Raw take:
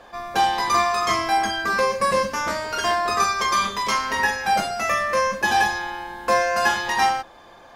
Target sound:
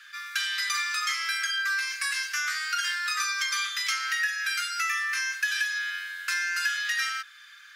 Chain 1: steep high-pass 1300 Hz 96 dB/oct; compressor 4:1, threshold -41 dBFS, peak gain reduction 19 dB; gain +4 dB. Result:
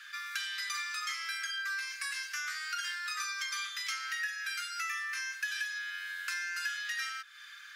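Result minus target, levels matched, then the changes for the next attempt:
compressor: peak gain reduction +8 dB
change: compressor 4:1, threshold -30 dBFS, peak gain reduction 10.5 dB

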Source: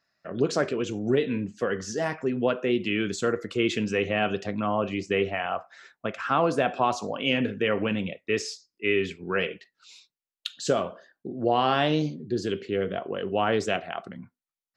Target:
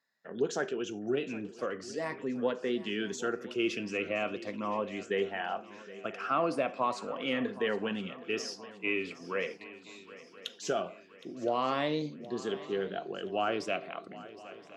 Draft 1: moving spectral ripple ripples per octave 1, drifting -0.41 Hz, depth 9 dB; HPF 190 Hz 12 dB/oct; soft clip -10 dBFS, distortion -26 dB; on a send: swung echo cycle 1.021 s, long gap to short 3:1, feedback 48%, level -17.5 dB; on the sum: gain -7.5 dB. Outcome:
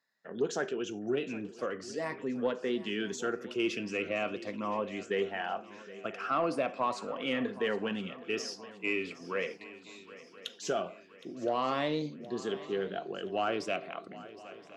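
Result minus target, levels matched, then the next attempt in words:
soft clip: distortion +17 dB
moving spectral ripple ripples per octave 1, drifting -0.41 Hz, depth 9 dB; HPF 190 Hz 12 dB/oct; soft clip -0.5 dBFS, distortion -43 dB; on a send: swung echo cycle 1.021 s, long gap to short 3:1, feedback 48%, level -17.5 dB; on the sum: gain -7.5 dB

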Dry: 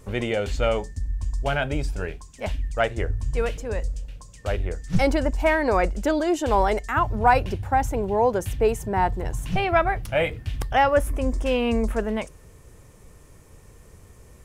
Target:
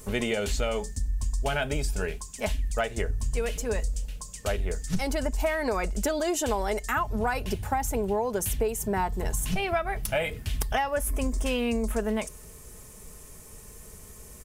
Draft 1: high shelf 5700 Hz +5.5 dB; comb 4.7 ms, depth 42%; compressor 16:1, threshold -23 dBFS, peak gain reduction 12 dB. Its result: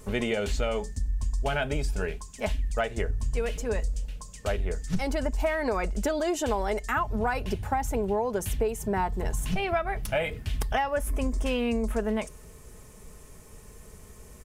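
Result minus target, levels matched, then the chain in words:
8000 Hz band -5.5 dB
high shelf 5700 Hz +15 dB; comb 4.7 ms, depth 42%; compressor 16:1, threshold -23 dBFS, peak gain reduction 12.5 dB

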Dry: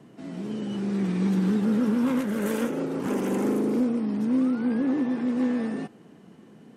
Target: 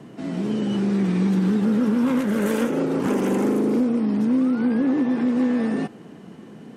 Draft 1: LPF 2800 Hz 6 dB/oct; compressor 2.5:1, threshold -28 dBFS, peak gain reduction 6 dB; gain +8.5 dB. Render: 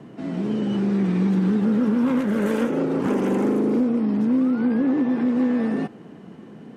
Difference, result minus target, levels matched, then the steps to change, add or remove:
8000 Hz band -7.0 dB
change: LPF 9700 Hz 6 dB/oct

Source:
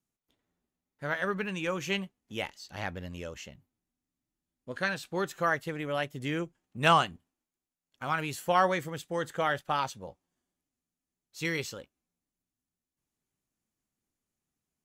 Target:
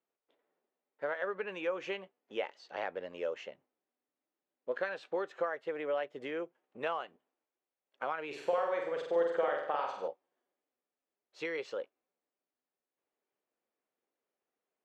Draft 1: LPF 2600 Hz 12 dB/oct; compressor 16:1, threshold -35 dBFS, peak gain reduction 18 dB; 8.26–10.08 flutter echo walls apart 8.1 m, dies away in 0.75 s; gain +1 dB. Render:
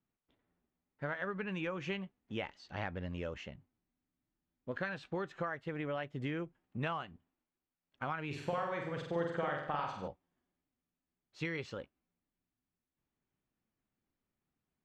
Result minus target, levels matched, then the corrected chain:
500 Hz band -3.5 dB
LPF 2600 Hz 12 dB/oct; compressor 16:1, threshold -35 dBFS, peak gain reduction 18 dB; resonant high-pass 480 Hz, resonance Q 2.3; 8.26–10.08 flutter echo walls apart 8.1 m, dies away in 0.75 s; gain +1 dB

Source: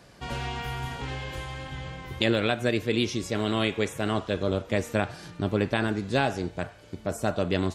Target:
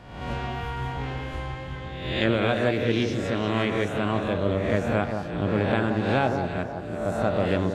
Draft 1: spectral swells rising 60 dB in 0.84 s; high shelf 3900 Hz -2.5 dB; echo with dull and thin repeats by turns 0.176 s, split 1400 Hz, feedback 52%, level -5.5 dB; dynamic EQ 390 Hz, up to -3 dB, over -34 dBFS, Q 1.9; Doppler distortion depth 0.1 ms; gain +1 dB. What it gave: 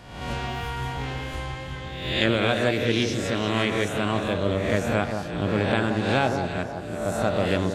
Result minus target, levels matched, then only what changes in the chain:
8000 Hz band +8.5 dB
change: high shelf 3900 Hz -14.5 dB

